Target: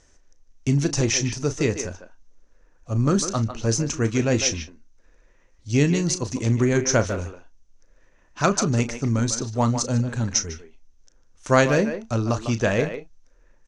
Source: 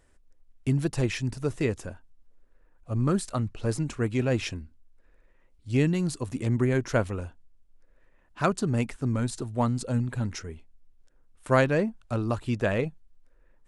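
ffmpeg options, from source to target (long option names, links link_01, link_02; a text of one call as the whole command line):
ffmpeg -i in.wav -filter_complex "[0:a]lowpass=frequency=6100:width_type=q:width=8.6,asplit=2[link_01][link_02];[link_02]adelay=35,volume=-12dB[link_03];[link_01][link_03]amix=inputs=2:normalize=0,asplit=2[link_04][link_05];[link_05]adelay=150,highpass=300,lowpass=3400,asoftclip=type=hard:threshold=-16.5dB,volume=-8dB[link_06];[link_04][link_06]amix=inputs=2:normalize=0,volume=4dB" out.wav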